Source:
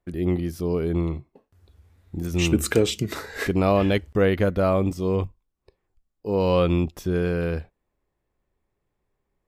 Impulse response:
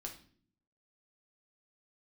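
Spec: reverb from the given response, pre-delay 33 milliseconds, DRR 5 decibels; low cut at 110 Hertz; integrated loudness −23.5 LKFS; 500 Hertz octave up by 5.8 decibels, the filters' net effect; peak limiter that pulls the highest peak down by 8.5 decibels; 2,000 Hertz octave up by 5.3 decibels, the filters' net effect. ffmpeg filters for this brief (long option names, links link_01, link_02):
-filter_complex "[0:a]highpass=110,equalizer=frequency=500:width_type=o:gain=6.5,equalizer=frequency=2000:width_type=o:gain=6.5,alimiter=limit=-11dB:level=0:latency=1,asplit=2[link_01][link_02];[1:a]atrim=start_sample=2205,adelay=33[link_03];[link_02][link_03]afir=irnorm=-1:irlink=0,volume=-2dB[link_04];[link_01][link_04]amix=inputs=2:normalize=0,volume=-2dB"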